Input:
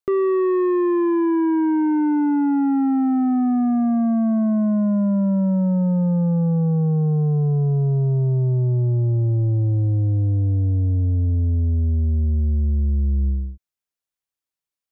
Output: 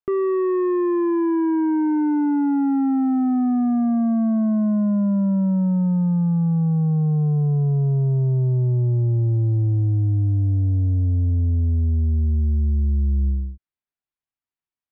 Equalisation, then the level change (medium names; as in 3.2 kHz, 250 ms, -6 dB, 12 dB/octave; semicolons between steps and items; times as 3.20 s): distance through air 350 m; peaking EQ 510 Hz -14.5 dB 0.21 oct; 0.0 dB